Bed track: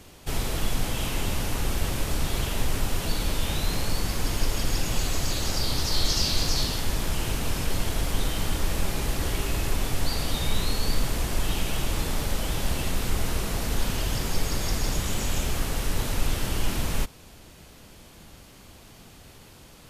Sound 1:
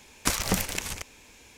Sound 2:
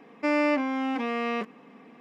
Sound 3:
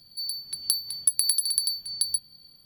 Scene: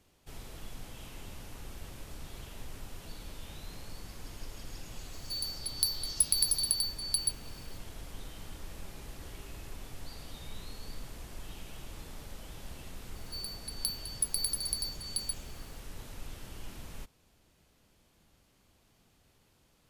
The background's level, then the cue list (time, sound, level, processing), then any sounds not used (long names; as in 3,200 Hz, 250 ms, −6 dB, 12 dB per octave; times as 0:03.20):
bed track −18.5 dB
0:05.13: mix in 3 −4.5 dB
0:13.15: mix in 3 −9 dB
not used: 1, 2